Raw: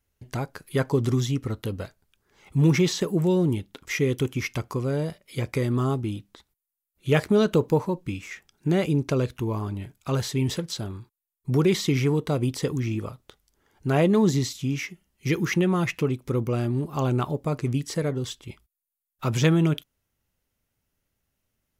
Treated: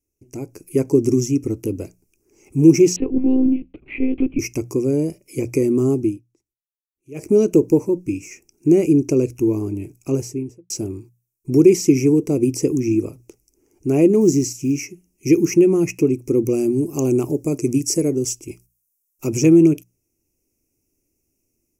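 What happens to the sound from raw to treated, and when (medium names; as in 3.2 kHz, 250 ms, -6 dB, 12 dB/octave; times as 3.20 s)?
2.96–4.39 s: monotone LPC vocoder at 8 kHz 260 Hz
6.04–7.29 s: dip -21.5 dB, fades 0.15 s
9.96–10.70 s: studio fade out
14.21–14.79 s: block-companded coder 7-bit
16.45–19.27 s: tone controls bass -1 dB, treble +7 dB
whole clip: hum notches 60/120/180 Hz; level rider gain up to 9 dB; FFT filter 200 Hz 0 dB, 330 Hz +14 dB, 560 Hz -2 dB, 1.7 kHz -18 dB, 2.5 kHz +2 dB, 3.6 kHz -27 dB, 5.6 kHz +9 dB, 11 kHz +5 dB; trim -6.5 dB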